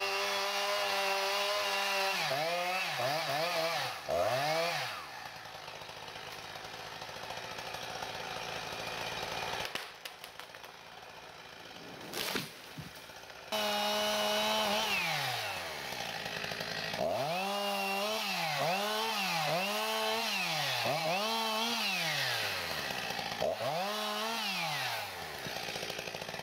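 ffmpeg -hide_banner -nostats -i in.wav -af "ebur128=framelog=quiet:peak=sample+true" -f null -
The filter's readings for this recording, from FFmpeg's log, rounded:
Integrated loudness:
  I:         -33.3 LUFS
  Threshold: -43.9 LUFS
Loudness range:
  LRA:         9.7 LU
  Threshold: -54.0 LUFS
  LRA low:   -41.1 LUFS
  LRA high:  -31.5 LUFS
Sample peak:
  Peak:      -18.8 dBFS
True peak:
  Peak:      -18.8 dBFS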